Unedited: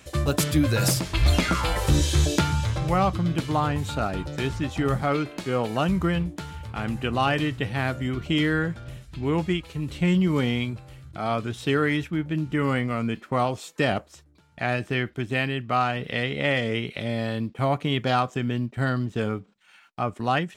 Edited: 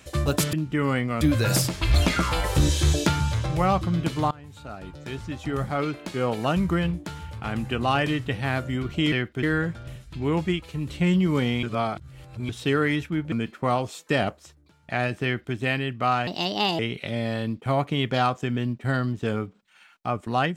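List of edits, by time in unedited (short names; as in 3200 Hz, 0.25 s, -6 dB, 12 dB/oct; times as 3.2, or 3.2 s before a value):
3.63–5.62 fade in linear, from -23 dB
10.64–11.5 reverse
12.33–13.01 move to 0.53
14.93–15.24 copy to 8.44
15.96–16.72 speed 146%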